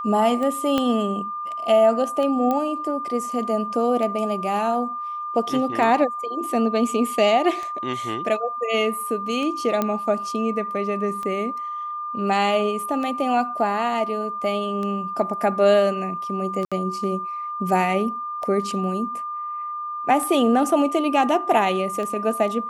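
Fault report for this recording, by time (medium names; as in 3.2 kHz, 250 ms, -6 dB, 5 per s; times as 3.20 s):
tick 33 1/3 rpm -18 dBFS
whine 1.2 kHz -27 dBFS
0.78 s: pop -9 dBFS
2.51 s: pop -12 dBFS
9.82 s: pop -9 dBFS
16.65–16.72 s: dropout 66 ms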